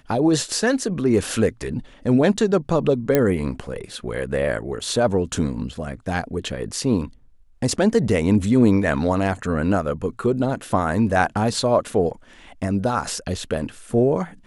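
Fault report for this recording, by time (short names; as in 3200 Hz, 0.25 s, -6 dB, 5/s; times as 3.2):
3.15 pop -4 dBFS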